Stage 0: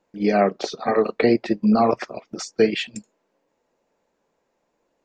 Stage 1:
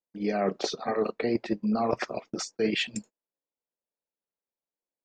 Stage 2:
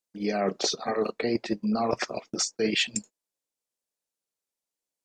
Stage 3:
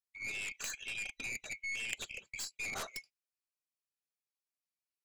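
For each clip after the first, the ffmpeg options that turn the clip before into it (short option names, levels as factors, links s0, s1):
-af "agate=range=0.0355:threshold=0.00708:ratio=16:detection=peak,areverse,acompressor=threshold=0.0631:ratio=6,areverse"
-af "equalizer=f=7600:w=0.56:g=9.5"
-af "afftfilt=real='real(if(lt(b,920),b+92*(1-2*mod(floor(b/92),2)),b),0)':imag='imag(if(lt(b,920),b+92*(1-2*mod(floor(b/92),2)),b),0)':win_size=2048:overlap=0.75,aeval=exprs='0.299*(cos(1*acos(clip(val(0)/0.299,-1,1)))-cos(1*PI/2))+0.15*(cos(3*acos(clip(val(0)/0.299,-1,1)))-cos(3*PI/2))+0.0188*(cos(6*acos(clip(val(0)/0.299,-1,1)))-cos(6*PI/2))+0.0133*(cos(7*acos(clip(val(0)/0.299,-1,1)))-cos(7*PI/2))+0.0211*(cos(8*acos(clip(val(0)/0.299,-1,1)))-cos(8*PI/2))':c=same,volume=0.376"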